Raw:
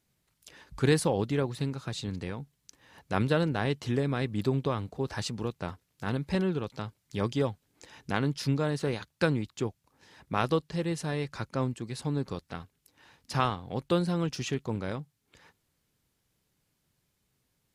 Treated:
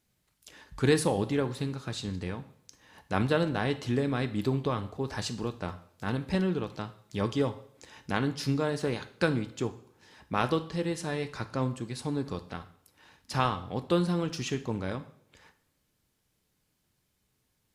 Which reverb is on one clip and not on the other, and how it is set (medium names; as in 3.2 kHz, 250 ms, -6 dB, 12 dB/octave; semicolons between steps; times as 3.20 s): two-slope reverb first 0.54 s, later 2 s, from -26 dB, DRR 9 dB